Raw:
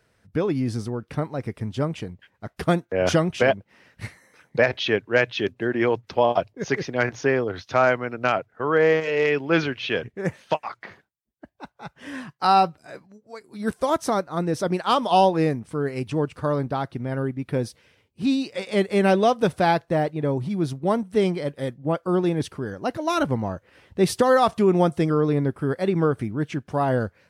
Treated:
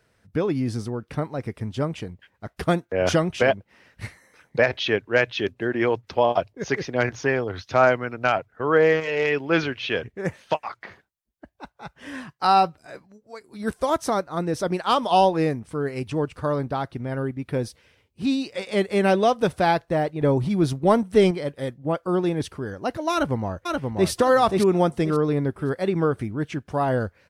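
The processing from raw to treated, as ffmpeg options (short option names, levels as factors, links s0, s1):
-filter_complex "[0:a]asettb=1/sr,asplit=3[s0][s1][s2];[s0]atrim=end=6.934[s3];[s1]atrim=start=6.93:end=9.33,asetpts=PTS-STARTPTS,afade=t=in:d=0.004:c=qsin,afade=t=out:st=2.396:d=0.004:c=qsin,aphaser=in_gain=1:out_gain=1:delay=1.4:decay=0.26:speed=1.1:type=triangular[s4];[s2]atrim=start=9.326[s5];[s3][s4]acrossfade=d=0.004:c1=hsin:c2=qsin[s6];[s6][s5]acrossfade=d=0.004:c1=qsin:c2=hsin,asettb=1/sr,asplit=3[s7][s8][s9];[s7]atrim=end=20.214[s10];[s8]atrim=start=20.21:end=21.31,asetpts=PTS-STARTPTS,afade=t=in:d=0.004:c=qsin,afade=t=out:st=1.096:d=0.004:c=qsin,acontrast=27[s11];[s9]atrim=start=21.306[s12];[s10][s11]acrossfade=d=0.004:c1=hsin:c2=qsin[s13];[s13][s12]acrossfade=d=0.004:c1=qsin:c2=hsin,asplit=2[s14][s15];[s15]afade=t=in:st=23.12:d=0.01,afade=t=out:st=24.1:d=0.01,aecho=0:1:530|1060|1590|2120:0.668344|0.167086|0.0417715|0.0104429[s16];[s14][s16]amix=inputs=2:normalize=0,asubboost=boost=2.5:cutoff=76"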